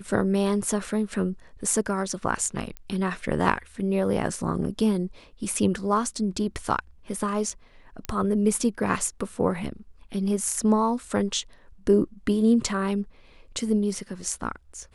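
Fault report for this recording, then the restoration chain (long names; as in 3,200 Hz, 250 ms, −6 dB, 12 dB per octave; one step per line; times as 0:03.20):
0:02.77: click −21 dBFS
0:08.05: click −15 dBFS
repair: click removal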